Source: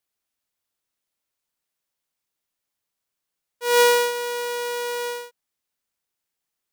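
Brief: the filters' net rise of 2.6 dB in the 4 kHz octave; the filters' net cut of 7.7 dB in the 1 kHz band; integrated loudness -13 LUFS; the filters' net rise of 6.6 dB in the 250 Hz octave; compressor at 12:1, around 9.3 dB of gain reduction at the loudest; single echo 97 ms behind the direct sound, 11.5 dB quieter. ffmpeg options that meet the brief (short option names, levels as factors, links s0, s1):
-af "equalizer=f=250:t=o:g=7.5,equalizer=f=1000:t=o:g=-9,equalizer=f=4000:t=o:g=4,acompressor=threshold=0.0794:ratio=12,aecho=1:1:97:0.266,volume=5.31"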